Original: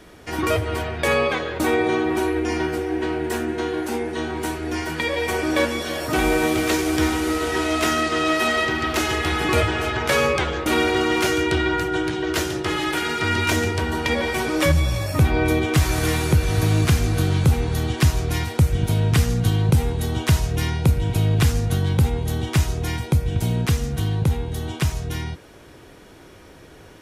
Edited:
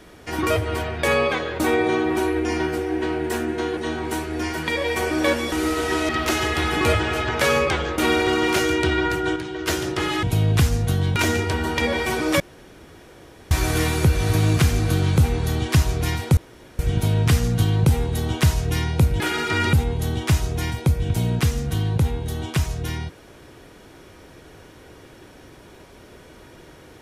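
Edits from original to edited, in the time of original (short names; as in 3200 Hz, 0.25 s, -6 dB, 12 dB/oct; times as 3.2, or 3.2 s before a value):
3.77–4.09 cut
5.84–7.16 cut
7.73–8.77 cut
12.04–12.35 gain -5.5 dB
12.91–13.44 swap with 21.06–21.99
14.68–15.79 room tone
18.65 insert room tone 0.42 s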